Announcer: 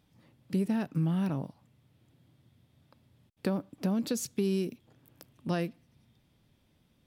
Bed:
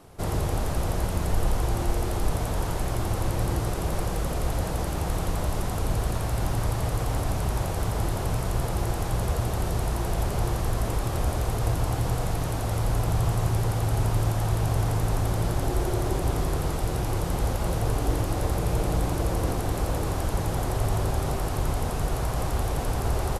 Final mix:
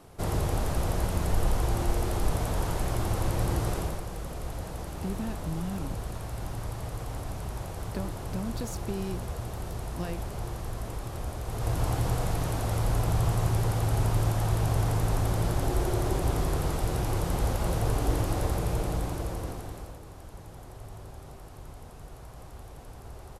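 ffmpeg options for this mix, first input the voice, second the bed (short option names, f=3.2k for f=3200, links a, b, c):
-filter_complex "[0:a]adelay=4500,volume=-5.5dB[a];[1:a]volume=6dB,afade=t=out:st=3.76:d=0.25:silence=0.421697,afade=t=in:st=11.44:d=0.41:silence=0.421697,afade=t=out:st=18.33:d=1.66:silence=0.141254[b];[a][b]amix=inputs=2:normalize=0"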